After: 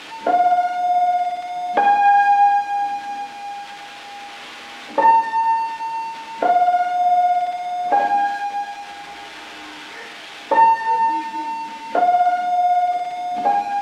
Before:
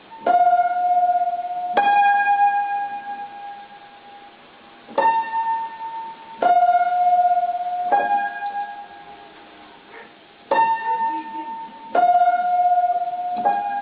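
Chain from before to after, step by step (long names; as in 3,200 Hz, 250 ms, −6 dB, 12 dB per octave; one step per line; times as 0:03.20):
spike at every zero crossing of −16 dBFS
low-pass filter 2,500 Hz 12 dB per octave
feedback delay network reverb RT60 0.75 s, low-frequency decay 1.25×, high-frequency decay 1×, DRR 5.5 dB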